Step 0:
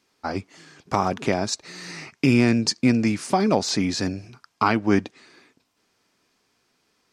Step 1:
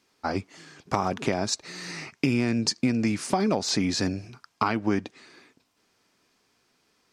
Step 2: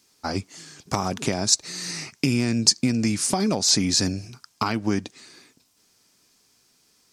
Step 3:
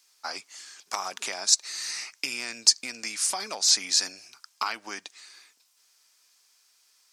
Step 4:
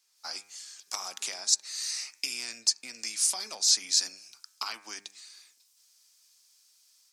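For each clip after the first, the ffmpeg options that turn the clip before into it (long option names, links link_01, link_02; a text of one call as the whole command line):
ffmpeg -i in.wav -af "acompressor=threshold=-20dB:ratio=6" out.wav
ffmpeg -i in.wav -af "bass=frequency=250:gain=5,treble=frequency=4000:gain=14,volume=-1dB" out.wav
ffmpeg -i in.wav -af "highpass=1000,volume=-1dB" out.wav
ffmpeg -i in.wav -filter_complex "[0:a]bandreject=frequency=100.4:width_type=h:width=4,bandreject=frequency=200.8:width_type=h:width=4,bandreject=frequency=301.2:width_type=h:width=4,bandreject=frequency=401.6:width_type=h:width=4,bandreject=frequency=502:width_type=h:width=4,bandreject=frequency=602.4:width_type=h:width=4,bandreject=frequency=702.8:width_type=h:width=4,bandreject=frequency=803.2:width_type=h:width=4,bandreject=frequency=903.6:width_type=h:width=4,bandreject=frequency=1004:width_type=h:width=4,bandreject=frequency=1104.4:width_type=h:width=4,bandreject=frequency=1204.8:width_type=h:width=4,bandreject=frequency=1305.2:width_type=h:width=4,bandreject=frequency=1405.6:width_type=h:width=4,bandreject=frequency=1506:width_type=h:width=4,bandreject=frequency=1606.4:width_type=h:width=4,bandreject=frequency=1706.8:width_type=h:width=4,bandreject=frequency=1807.2:width_type=h:width=4,bandreject=frequency=1907.6:width_type=h:width=4,bandreject=frequency=2008:width_type=h:width=4,bandreject=frequency=2108.4:width_type=h:width=4,bandreject=frequency=2208.8:width_type=h:width=4,bandreject=frequency=2309.2:width_type=h:width=4,bandreject=frequency=2409.6:width_type=h:width=4,bandreject=frequency=2510:width_type=h:width=4,bandreject=frequency=2610.4:width_type=h:width=4,acrossover=split=190|1600|3300[link_01][link_02][link_03][link_04];[link_04]dynaudnorm=framelen=120:gausssize=3:maxgain=10dB[link_05];[link_01][link_02][link_03][link_05]amix=inputs=4:normalize=0,volume=-8.5dB" out.wav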